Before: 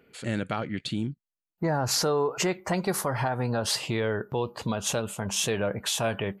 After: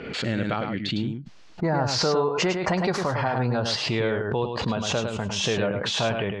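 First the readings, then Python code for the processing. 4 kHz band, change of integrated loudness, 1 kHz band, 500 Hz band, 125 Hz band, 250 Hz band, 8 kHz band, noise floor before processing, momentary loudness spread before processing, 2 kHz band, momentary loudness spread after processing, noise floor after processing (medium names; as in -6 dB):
+4.0 dB, +3.0 dB, +3.5 dB, +3.5 dB, +3.5 dB, +3.5 dB, -4.0 dB, under -85 dBFS, 7 LU, +4.5 dB, 5 LU, -46 dBFS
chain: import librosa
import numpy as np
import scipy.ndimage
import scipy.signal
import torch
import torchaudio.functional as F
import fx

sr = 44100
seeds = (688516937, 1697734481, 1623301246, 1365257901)

y = scipy.signal.sosfilt(scipy.signal.butter(4, 5400.0, 'lowpass', fs=sr, output='sos'), x)
y = y + 10.0 ** (-6.0 / 20.0) * np.pad(y, (int(105 * sr / 1000.0), 0))[:len(y)]
y = fx.pre_swell(y, sr, db_per_s=48.0)
y = y * librosa.db_to_amplitude(2.0)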